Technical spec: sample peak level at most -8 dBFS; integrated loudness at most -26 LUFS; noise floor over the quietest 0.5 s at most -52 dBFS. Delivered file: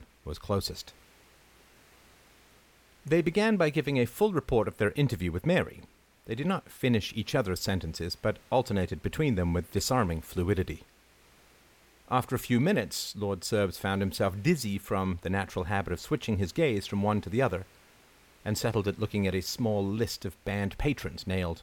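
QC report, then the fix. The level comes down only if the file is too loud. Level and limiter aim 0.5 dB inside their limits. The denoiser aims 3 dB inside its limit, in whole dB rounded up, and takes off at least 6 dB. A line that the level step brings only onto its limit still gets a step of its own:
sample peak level -12.5 dBFS: pass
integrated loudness -30.0 LUFS: pass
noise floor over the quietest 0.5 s -60 dBFS: pass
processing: none needed

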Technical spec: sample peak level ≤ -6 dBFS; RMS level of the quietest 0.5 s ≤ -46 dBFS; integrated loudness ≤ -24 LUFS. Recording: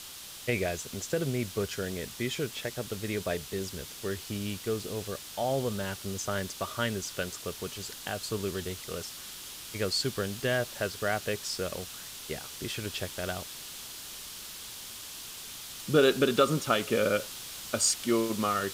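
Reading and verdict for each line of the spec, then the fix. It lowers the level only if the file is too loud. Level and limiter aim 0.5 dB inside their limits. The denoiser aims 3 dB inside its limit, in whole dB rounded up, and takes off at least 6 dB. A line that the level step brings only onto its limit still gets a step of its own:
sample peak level -11.0 dBFS: pass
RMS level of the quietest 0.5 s -44 dBFS: fail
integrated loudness -32.0 LUFS: pass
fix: noise reduction 6 dB, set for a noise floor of -44 dBFS

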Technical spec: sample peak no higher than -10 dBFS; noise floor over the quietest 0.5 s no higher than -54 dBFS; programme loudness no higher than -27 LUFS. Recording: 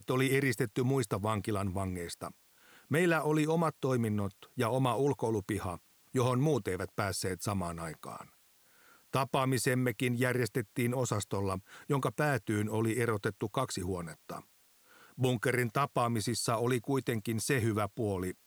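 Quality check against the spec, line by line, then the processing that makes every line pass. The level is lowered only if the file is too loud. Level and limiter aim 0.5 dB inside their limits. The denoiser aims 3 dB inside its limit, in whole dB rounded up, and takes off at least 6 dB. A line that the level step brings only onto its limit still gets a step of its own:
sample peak -14.0 dBFS: pass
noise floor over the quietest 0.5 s -65 dBFS: pass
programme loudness -32.5 LUFS: pass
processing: none needed

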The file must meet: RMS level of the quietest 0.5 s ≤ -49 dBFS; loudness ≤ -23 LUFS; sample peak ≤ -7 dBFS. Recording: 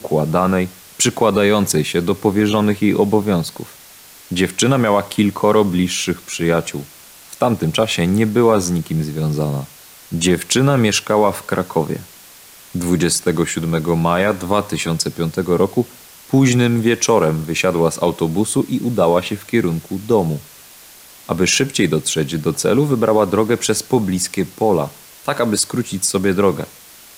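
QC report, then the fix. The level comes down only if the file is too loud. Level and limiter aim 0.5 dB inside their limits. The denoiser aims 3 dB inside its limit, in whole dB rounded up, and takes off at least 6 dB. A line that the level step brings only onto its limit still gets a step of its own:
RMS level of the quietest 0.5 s -42 dBFS: fail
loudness -17.0 LUFS: fail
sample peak -3.5 dBFS: fail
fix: noise reduction 6 dB, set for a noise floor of -42 dBFS; trim -6.5 dB

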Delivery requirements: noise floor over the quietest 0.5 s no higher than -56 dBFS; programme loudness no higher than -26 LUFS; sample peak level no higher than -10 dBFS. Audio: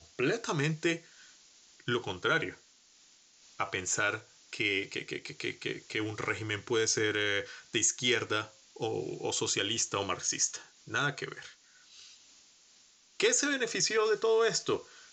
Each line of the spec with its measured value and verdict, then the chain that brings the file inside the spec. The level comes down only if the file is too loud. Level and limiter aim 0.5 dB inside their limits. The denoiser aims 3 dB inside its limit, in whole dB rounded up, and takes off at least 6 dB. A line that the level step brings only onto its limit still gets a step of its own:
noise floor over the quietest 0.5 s -62 dBFS: pass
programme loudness -31.0 LUFS: pass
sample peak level -15.0 dBFS: pass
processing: none needed

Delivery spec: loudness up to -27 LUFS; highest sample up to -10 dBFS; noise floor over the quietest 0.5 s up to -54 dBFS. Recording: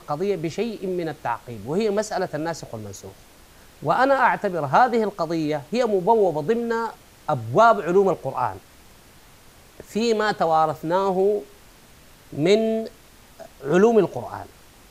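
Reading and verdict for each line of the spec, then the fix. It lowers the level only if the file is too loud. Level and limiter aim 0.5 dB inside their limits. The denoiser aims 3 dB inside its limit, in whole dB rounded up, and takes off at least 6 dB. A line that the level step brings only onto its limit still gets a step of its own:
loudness -22.0 LUFS: fail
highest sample -5.5 dBFS: fail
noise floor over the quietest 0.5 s -50 dBFS: fail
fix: trim -5.5 dB

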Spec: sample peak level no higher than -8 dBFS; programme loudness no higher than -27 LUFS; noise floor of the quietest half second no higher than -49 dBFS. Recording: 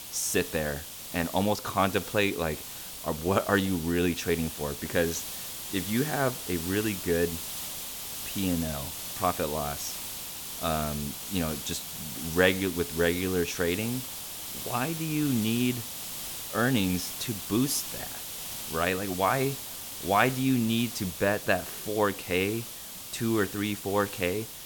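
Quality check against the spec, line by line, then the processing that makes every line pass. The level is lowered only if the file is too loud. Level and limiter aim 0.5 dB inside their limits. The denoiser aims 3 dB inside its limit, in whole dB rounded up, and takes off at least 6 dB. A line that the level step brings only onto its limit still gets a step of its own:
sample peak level -7.0 dBFS: fail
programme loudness -29.0 LUFS: pass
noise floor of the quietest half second -41 dBFS: fail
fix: noise reduction 11 dB, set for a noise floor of -41 dBFS; peak limiter -8.5 dBFS

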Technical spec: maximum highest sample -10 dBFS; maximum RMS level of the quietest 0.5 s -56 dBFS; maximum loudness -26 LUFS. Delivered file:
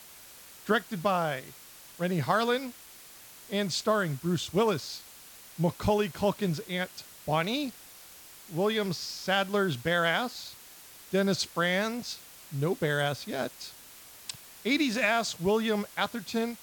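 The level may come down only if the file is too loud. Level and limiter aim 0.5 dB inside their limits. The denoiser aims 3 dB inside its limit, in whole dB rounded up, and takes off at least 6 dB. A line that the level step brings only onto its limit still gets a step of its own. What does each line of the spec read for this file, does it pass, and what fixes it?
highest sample -11.5 dBFS: pass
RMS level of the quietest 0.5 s -51 dBFS: fail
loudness -29.5 LUFS: pass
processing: noise reduction 8 dB, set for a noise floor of -51 dBFS

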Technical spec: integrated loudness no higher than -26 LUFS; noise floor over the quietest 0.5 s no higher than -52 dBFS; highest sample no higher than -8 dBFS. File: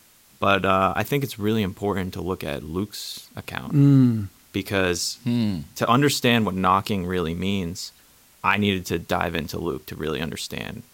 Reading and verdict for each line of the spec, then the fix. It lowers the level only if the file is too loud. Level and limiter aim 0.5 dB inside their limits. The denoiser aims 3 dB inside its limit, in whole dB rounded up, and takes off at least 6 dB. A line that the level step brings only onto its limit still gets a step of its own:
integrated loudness -23.0 LUFS: fail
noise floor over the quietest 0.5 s -55 dBFS: pass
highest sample -4.5 dBFS: fail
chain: trim -3.5 dB; peak limiter -8.5 dBFS

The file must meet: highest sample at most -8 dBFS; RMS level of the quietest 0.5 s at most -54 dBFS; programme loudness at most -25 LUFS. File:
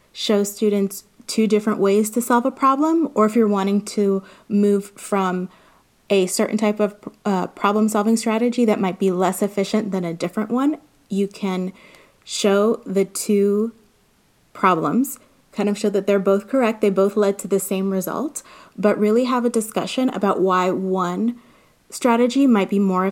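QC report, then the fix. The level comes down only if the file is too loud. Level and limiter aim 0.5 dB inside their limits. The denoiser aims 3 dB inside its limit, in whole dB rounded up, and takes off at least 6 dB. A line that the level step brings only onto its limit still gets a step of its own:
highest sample -1.5 dBFS: fail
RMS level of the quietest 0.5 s -59 dBFS: pass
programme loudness -20.0 LUFS: fail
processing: trim -5.5 dB; peak limiter -8.5 dBFS

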